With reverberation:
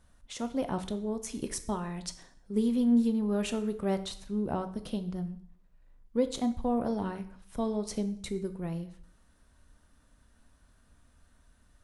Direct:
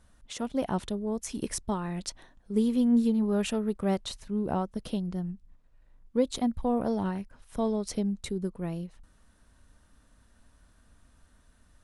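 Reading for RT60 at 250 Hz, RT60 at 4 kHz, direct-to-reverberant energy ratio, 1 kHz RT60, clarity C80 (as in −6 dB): 0.65 s, 0.55 s, 9.0 dB, 0.60 s, 16.5 dB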